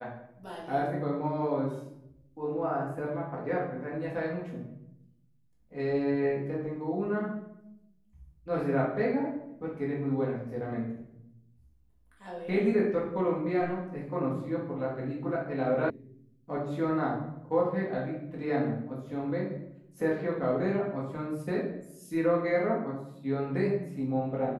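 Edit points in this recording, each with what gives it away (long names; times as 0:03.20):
0:15.90: cut off before it has died away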